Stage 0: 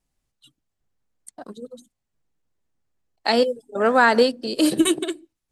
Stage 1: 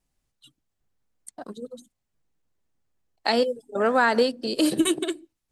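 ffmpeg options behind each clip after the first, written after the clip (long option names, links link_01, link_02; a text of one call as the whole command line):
ffmpeg -i in.wav -af "acompressor=threshold=-23dB:ratio=1.5" out.wav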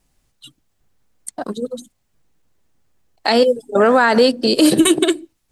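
ffmpeg -i in.wav -af "alimiter=level_in=15dB:limit=-1dB:release=50:level=0:latency=1,volume=-2.5dB" out.wav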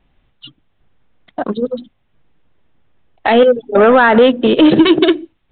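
ffmpeg -i in.wav -af "acontrast=72,aresample=8000,aresample=44100" out.wav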